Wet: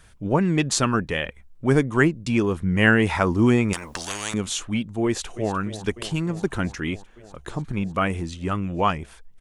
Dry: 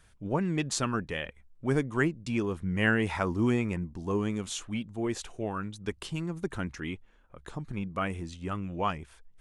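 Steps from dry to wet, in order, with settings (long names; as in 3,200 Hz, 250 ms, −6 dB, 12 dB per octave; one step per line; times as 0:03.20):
0:03.73–0:04.34: every bin compressed towards the loudest bin 10 to 1
0:05.06–0:05.53: delay throw 300 ms, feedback 80%, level −13.5 dB
level +8.5 dB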